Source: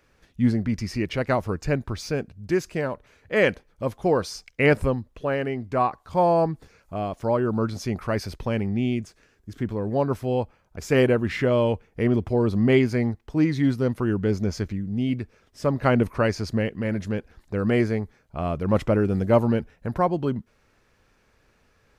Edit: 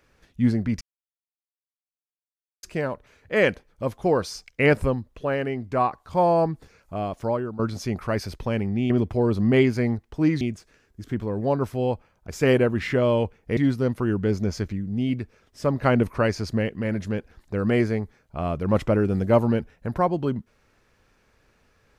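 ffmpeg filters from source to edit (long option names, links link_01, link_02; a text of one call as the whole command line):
ffmpeg -i in.wav -filter_complex "[0:a]asplit=7[link_01][link_02][link_03][link_04][link_05][link_06][link_07];[link_01]atrim=end=0.81,asetpts=PTS-STARTPTS,afade=type=out:start_time=0.806:duration=0.004:curve=hsin[link_08];[link_02]atrim=start=0.81:end=2.63,asetpts=PTS-STARTPTS,volume=0[link_09];[link_03]atrim=start=2.63:end=7.59,asetpts=PTS-STARTPTS,afade=type=in:duration=0.004:curve=hsin,afade=type=out:start_time=4.59:duration=0.37:silence=0.177828[link_10];[link_04]atrim=start=7.59:end=8.902,asetpts=PTS-STARTPTS,afade=type=in:duration=0.004:curve=hsin:silence=0.177828[link_11];[link_05]atrim=start=12.058:end=13.572[link_12];[link_06]atrim=start=8.898:end=12.062[link_13];[link_07]atrim=start=13.568[link_14];[link_08][link_09][link_10][link_11]concat=n=4:v=0:a=1[link_15];[link_15][link_12]acrossfade=duration=0.004:curve1=hsin:curve2=hsin[link_16];[link_16][link_13]acrossfade=duration=0.004:curve1=hsin:curve2=hsin[link_17];[link_17][link_14]acrossfade=duration=0.004:curve1=hsin:curve2=hsin" out.wav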